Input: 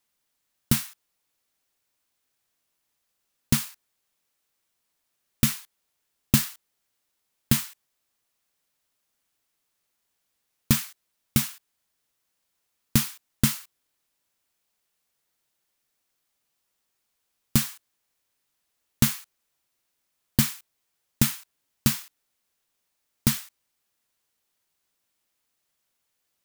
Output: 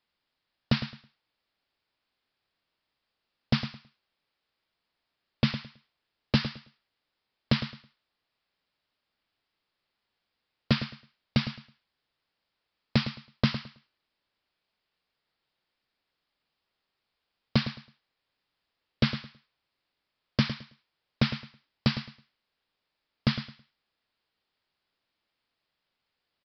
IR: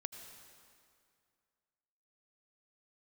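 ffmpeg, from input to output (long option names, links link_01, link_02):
-af "aresample=11025,aeval=exprs='0.237*(abs(mod(val(0)/0.237+3,4)-2)-1)':channel_layout=same,aresample=44100,aecho=1:1:108|216|324:0.266|0.0585|0.0129"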